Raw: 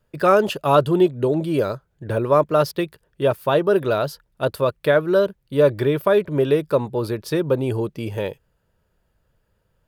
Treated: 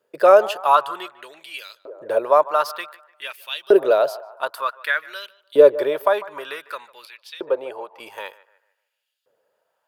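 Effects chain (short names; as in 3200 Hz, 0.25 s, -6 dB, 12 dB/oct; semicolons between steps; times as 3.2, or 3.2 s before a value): 7.05–8 three-band isolator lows -13 dB, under 570 Hz, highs -13 dB, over 3200 Hz; on a send: narrowing echo 0.149 s, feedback 60%, band-pass 760 Hz, level -15.5 dB; on the sum: LFO high-pass saw up 0.54 Hz 400–3600 Hz; gain -1.5 dB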